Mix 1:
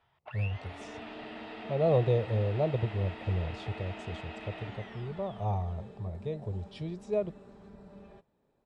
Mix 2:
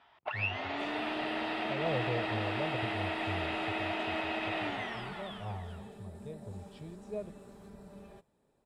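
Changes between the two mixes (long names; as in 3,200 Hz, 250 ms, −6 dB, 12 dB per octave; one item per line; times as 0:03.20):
speech −9.5 dB
first sound +10.0 dB
second sound: remove high-frequency loss of the air 120 metres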